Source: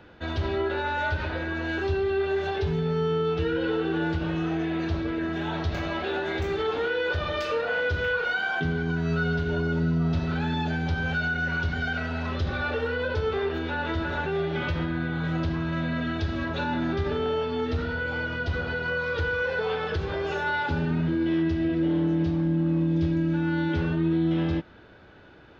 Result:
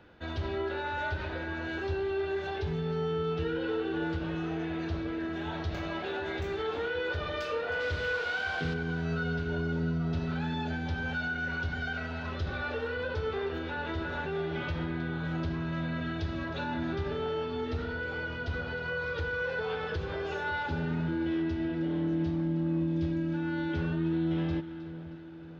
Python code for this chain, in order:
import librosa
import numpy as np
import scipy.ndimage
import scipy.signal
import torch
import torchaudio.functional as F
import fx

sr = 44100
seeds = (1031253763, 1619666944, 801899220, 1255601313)

y = fx.dmg_noise_band(x, sr, seeds[0], low_hz=400.0, high_hz=4300.0, level_db=-40.0, at=(7.79, 8.73), fade=0.02)
y = fx.echo_split(y, sr, split_hz=990.0, low_ms=556, high_ms=314, feedback_pct=52, wet_db=-13.5)
y = y * librosa.db_to_amplitude(-6.0)